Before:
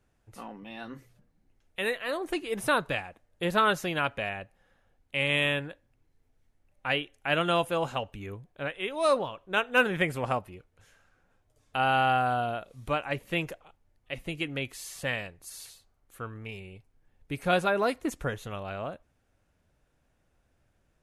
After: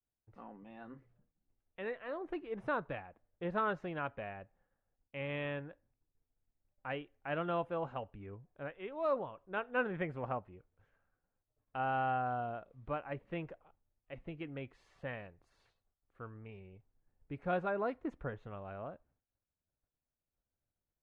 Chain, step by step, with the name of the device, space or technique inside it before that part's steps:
hearing-loss simulation (low-pass filter 1,500 Hz 12 dB per octave; downward expander −60 dBFS)
level −8.5 dB

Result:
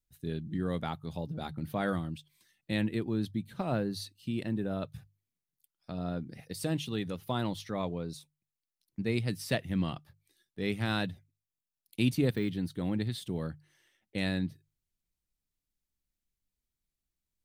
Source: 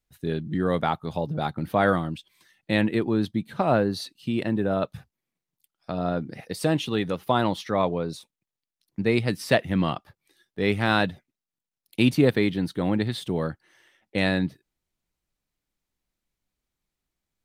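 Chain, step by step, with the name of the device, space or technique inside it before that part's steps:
0:12.32–0:12.72: de-essing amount 100%
smiley-face EQ (low-shelf EQ 130 Hz +6.5 dB; parametric band 880 Hz −6 dB 2.6 octaves; high-shelf EQ 6,300 Hz +5.5 dB)
mains-hum notches 50/100/150 Hz
level −7.5 dB

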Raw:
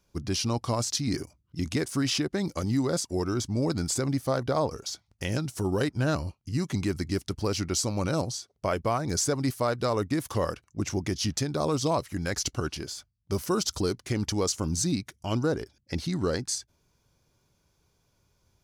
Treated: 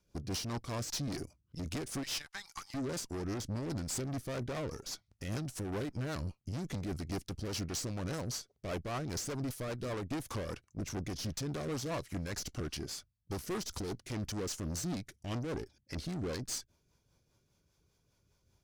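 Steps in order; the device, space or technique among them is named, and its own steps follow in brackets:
0:02.03–0:02.74: Butterworth high-pass 810 Hz 72 dB per octave
overdriven rotary cabinet (tube saturation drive 34 dB, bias 0.65; rotating-speaker cabinet horn 5 Hz)
level +1 dB

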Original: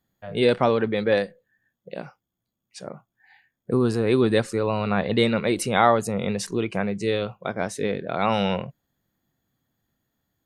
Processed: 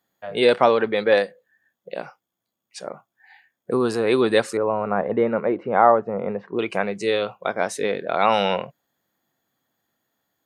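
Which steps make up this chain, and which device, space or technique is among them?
0:04.57–0:06.59: Bessel low-pass filter 1,100 Hz, order 4
filter by subtraction (in parallel: low-pass filter 700 Hz 12 dB per octave + polarity inversion)
on the sum: level +3.5 dB

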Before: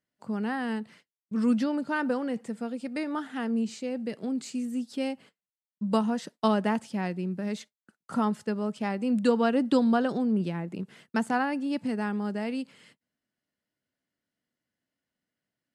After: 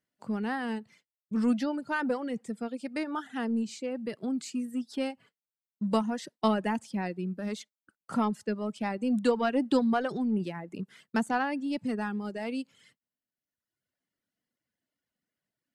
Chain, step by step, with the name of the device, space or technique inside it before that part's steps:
parallel distortion (in parallel at −10 dB: hard clipping −27 dBFS, distortion −8 dB)
on the sum: reverb reduction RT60 1.2 s
level −2 dB

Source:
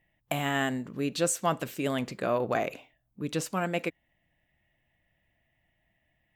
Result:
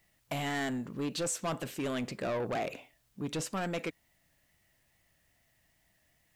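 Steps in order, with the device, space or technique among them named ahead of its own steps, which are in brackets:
compact cassette (soft clipping −29 dBFS, distortion −8 dB; low-pass filter 12,000 Hz 12 dB per octave; tape wow and flutter; white noise bed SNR 37 dB)

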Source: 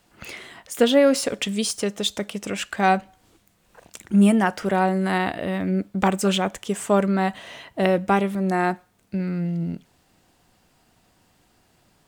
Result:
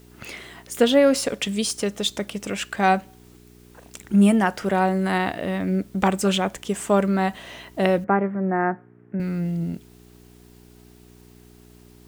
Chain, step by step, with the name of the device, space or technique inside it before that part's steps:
video cassette with head-switching buzz (hum with harmonics 60 Hz, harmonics 7, −50 dBFS −2 dB per octave; white noise bed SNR 36 dB)
0:08.04–0:09.20: elliptic band-pass filter 110–1,800 Hz, stop band 40 dB

